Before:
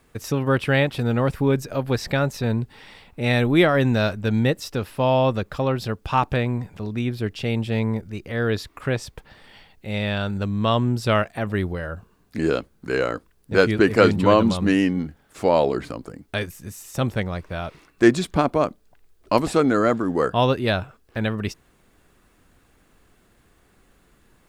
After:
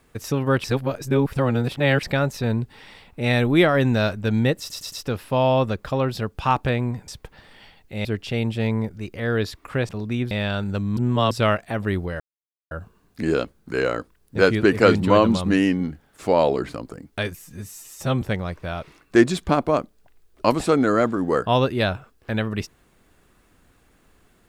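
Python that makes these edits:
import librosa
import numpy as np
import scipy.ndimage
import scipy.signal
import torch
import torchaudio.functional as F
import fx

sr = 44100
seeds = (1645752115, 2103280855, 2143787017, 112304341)

y = fx.edit(x, sr, fx.reverse_span(start_s=0.64, length_s=1.39),
    fx.stutter(start_s=4.59, slice_s=0.11, count=4),
    fx.swap(start_s=6.75, length_s=0.42, other_s=9.01, other_length_s=0.97),
    fx.reverse_span(start_s=10.64, length_s=0.34),
    fx.insert_silence(at_s=11.87, length_s=0.51),
    fx.stretch_span(start_s=16.51, length_s=0.58, factor=1.5), tone=tone)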